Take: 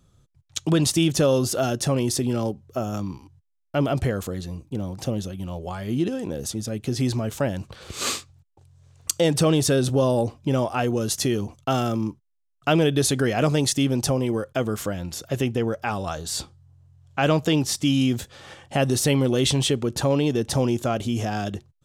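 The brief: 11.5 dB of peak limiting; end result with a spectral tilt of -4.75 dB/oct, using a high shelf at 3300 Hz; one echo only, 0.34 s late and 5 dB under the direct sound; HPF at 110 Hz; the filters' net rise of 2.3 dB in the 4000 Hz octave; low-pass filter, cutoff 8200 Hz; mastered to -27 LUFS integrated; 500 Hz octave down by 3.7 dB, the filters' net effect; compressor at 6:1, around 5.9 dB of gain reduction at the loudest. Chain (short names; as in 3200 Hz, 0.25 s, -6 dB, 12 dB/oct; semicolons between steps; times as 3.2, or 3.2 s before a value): HPF 110 Hz; LPF 8200 Hz; bell 500 Hz -4.5 dB; high shelf 3300 Hz -6 dB; bell 4000 Hz +7.5 dB; compressor 6:1, threshold -23 dBFS; limiter -21.5 dBFS; echo 0.34 s -5 dB; gain +4.5 dB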